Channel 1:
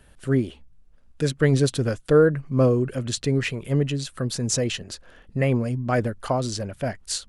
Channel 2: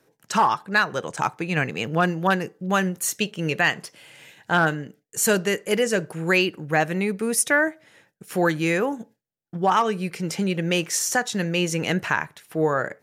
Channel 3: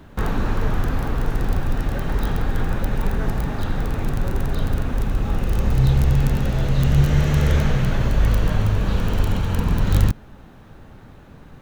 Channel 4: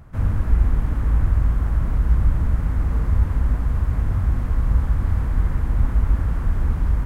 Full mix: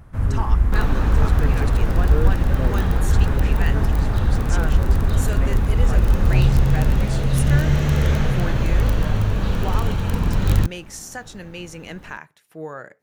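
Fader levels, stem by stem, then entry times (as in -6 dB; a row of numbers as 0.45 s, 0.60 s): -12.0 dB, -11.5 dB, -0.5 dB, 0.0 dB; 0.00 s, 0.00 s, 0.55 s, 0.00 s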